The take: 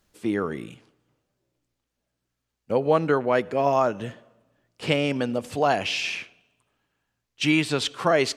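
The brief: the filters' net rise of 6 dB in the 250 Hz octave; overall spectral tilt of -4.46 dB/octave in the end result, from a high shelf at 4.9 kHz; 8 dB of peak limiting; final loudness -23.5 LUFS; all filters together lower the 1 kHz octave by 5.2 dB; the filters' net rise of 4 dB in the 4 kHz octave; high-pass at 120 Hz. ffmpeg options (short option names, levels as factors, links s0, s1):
-af "highpass=120,equalizer=f=250:t=o:g=8.5,equalizer=f=1000:t=o:g=-9,equalizer=f=4000:t=o:g=4,highshelf=f=4900:g=4.5,volume=1.06,alimiter=limit=0.251:level=0:latency=1"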